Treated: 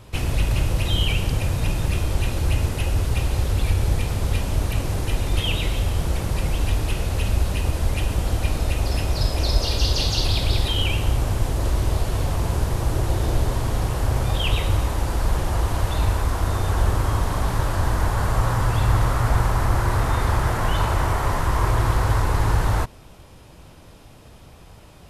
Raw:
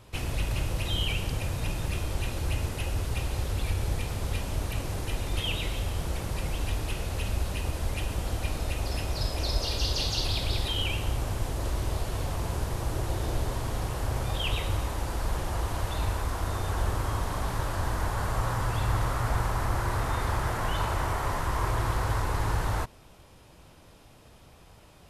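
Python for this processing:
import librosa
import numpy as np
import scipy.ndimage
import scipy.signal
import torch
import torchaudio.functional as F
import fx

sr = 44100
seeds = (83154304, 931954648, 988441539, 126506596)

y = fx.low_shelf(x, sr, hz=320.0, db=3.5)
y = y * 10.0 ** (5.5 / 20.0)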